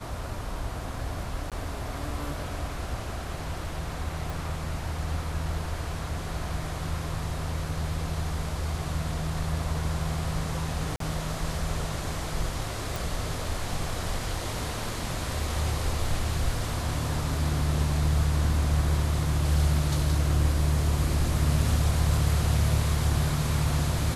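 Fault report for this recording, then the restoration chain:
1.50–1.52 s: dropout 17 ms
4.30 s: pop
10.96–11.00 s: dropout 43 ms
12.96 s: pop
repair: de-click; interpolate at 1.50 s, 17 ms; interpolate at 10.96 s, 43 ms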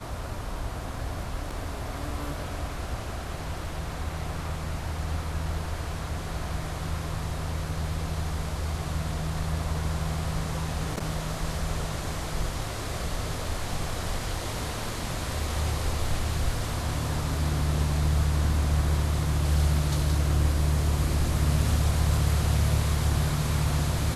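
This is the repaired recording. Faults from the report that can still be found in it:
nothing left

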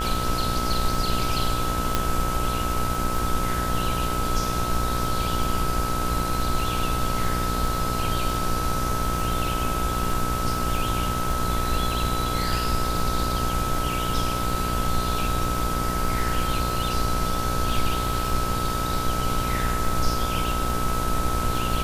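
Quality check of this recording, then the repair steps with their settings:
buzz 60 Hz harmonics 27 -29 dBFS
crackle 31 per s -29 dBFS
whine 1.3 kHz -28 dBFS
1.95 s: pop -6 dBFS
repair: de-click; de-hum 60 Hz, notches 27; band-stop 1.3 kHz, Q 30

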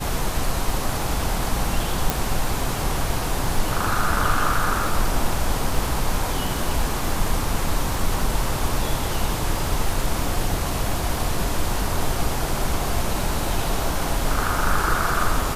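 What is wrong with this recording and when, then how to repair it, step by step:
crackle 27 per s -29 dBFS
2.10 s: pop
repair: de-click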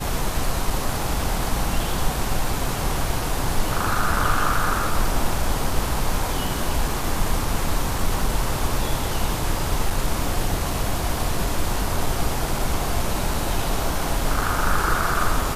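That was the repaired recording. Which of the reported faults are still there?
nothing left

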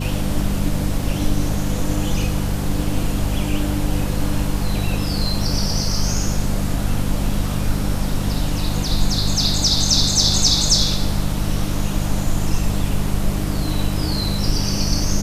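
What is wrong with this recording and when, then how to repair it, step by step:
hum 50 Hz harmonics 4 -24 dBFS
1.02 s: dropout 2.2 ms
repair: de-hum 50 Hz, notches 4; interpolate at 1.02 s, 2.2 ms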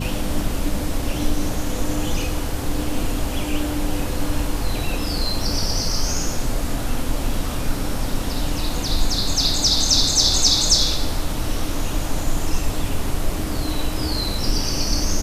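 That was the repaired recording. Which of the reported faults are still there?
nothing left

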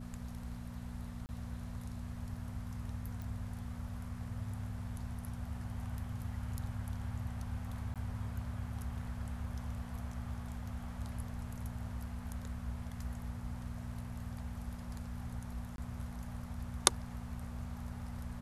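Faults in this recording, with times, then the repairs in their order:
hum 60 Hz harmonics 4 -46 dBFS
1.26–1.29 s: dropout 29 ms
3.22 s: pop
7.94–7.96 s: dropout 17 ms
15.76–15.78 s: dropout 22 ms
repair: de-click; de-hum 60 Hz, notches 4; interpolate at 1.26 s, 29 ms; interpolate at 7.94 s, 17 ms; interpolate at 15.76 s, 22 ms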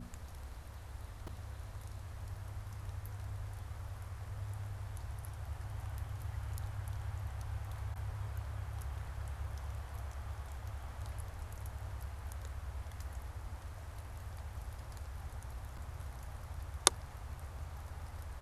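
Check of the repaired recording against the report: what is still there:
nothing left

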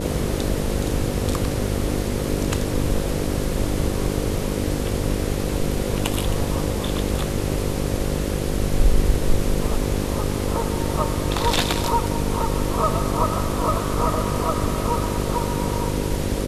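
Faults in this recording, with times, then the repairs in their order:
buzz 50 Hz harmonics 11 -26 dBFS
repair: de-hum 50 Hz, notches 11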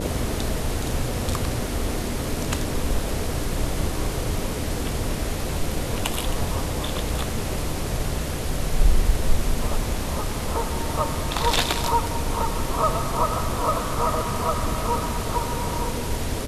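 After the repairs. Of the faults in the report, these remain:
nothing left

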